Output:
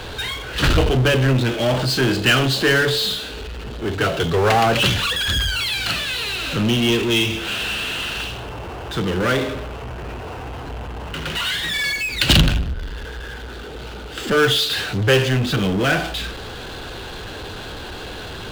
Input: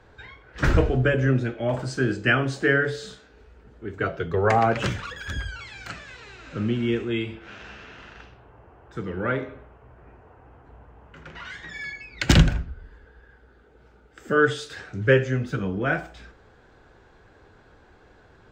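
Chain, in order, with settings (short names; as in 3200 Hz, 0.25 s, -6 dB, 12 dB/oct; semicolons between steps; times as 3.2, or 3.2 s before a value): band shelf 3500 Hz +12.5 dB 1 oct; power-law curve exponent 0.5; gain -8 dB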